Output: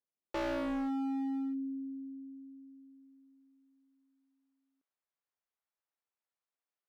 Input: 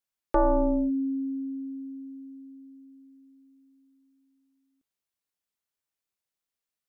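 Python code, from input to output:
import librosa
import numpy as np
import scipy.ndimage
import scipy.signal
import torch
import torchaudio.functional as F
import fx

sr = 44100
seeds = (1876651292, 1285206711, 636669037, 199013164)

y = fx.filter_sweep_bandpass(x, sr, from_hz=380.0, to_hz=910.0, start_s=1.33, end_s=3.59, q=0.79)
y = np.clip(10.0 ** (33.0 / 20.0) * y, -1.0, 1.0) / 10.0 ** (33.0 / 20.0)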